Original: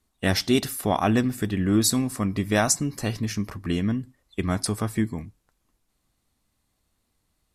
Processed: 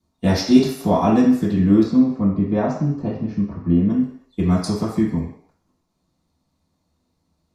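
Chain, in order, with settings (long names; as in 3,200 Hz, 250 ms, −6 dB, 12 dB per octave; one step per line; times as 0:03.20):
0:01.83–0:03.90: head-to-tape spacing loss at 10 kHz 41 dB
convolution reverb RT60 0.60 s, pre-delay 3 ms, DRR −11.5 dB
level −12.5 dB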